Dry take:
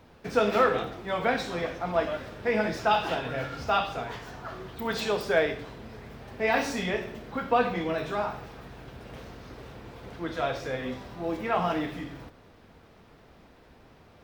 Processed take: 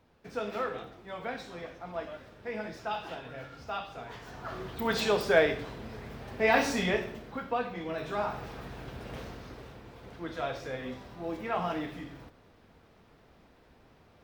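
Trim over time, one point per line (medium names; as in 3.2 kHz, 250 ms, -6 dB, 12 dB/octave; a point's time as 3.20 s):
3.88 s -11 dB
4.58 s +1 dB
6.93 s +1 dB
7.68 s -9.5 dB
8.50 s +2 dB
9.22 s +2 dB
9.84 s -5 dB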